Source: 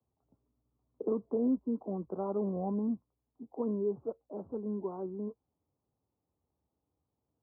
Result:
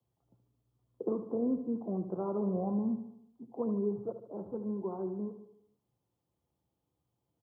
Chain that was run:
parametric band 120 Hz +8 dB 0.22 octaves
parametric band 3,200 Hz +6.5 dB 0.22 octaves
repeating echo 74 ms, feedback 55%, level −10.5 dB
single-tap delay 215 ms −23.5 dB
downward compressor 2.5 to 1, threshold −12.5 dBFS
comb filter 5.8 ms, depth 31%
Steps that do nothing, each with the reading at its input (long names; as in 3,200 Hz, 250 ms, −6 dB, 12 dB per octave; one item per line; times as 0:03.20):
parametric band 3,200 Hz: nothing at its input above 1,000 Hz
downward compressor, threshold −12.5 dBFS: peak of its input −20.5 dBFS